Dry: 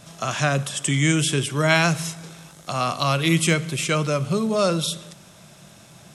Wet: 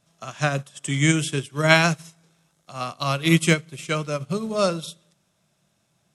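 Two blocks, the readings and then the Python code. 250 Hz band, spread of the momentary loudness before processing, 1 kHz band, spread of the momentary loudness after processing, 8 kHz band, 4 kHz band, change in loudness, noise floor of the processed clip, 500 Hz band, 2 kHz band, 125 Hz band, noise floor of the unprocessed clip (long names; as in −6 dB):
−1.0 dB, 12 LU, −2.0 dB, 15 LU, −4.5 dB, −2.0 dB, −1.0 dB, −69 dBFS, −1.0 dB, +0.5 dB, −1.5 dB, −48 dBFS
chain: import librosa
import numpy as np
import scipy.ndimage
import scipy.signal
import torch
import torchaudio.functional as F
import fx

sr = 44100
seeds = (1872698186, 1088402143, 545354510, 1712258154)

y = fx.upward_expand(x, sr, threshold_db=-32.0, expansion=2.5)
y = F.gain(torch.from_numpy(y), 4.0).numpy()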